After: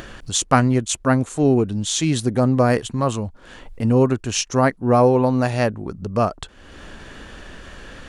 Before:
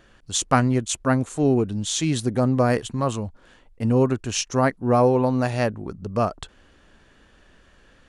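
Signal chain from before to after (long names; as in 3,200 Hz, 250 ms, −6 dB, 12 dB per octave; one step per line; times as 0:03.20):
upward compression, threshold −28 dBFS
level +3 dB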